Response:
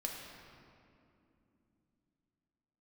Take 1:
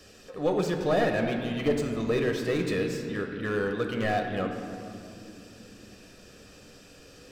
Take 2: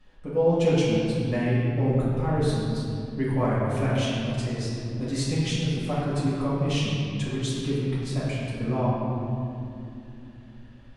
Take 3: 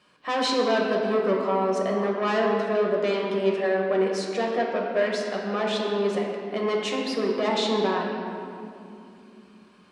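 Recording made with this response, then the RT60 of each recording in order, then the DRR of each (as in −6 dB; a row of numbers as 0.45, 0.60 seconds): 3; 2.8, 2.7, 2.8 seconds; 3.5, −9.0, −1.0 decibels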